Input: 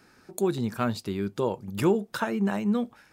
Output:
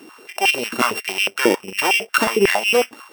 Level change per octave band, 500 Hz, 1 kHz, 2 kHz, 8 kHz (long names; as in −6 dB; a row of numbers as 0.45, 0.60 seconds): +8.0, +12.0, +19.5, +17.0 decibels